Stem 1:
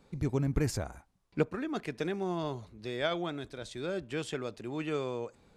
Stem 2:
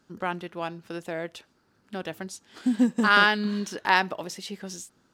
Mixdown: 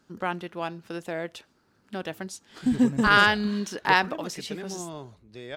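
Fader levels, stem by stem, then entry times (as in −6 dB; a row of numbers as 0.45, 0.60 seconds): −4.0, +0.5 decibels; 2.50, 0.00 seconds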